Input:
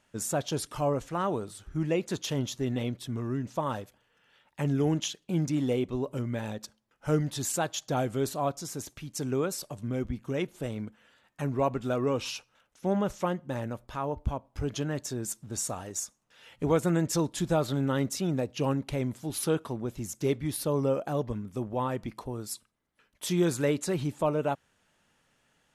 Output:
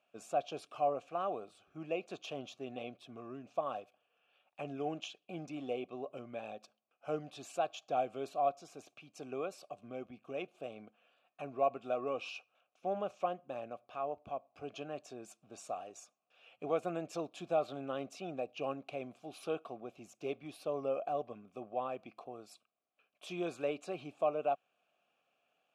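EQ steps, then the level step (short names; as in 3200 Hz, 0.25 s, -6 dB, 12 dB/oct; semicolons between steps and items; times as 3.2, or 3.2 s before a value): vowel filter a; HPF 110 Hz; bell 950 Hz -9 dB 0.97 oct; +8.0 dB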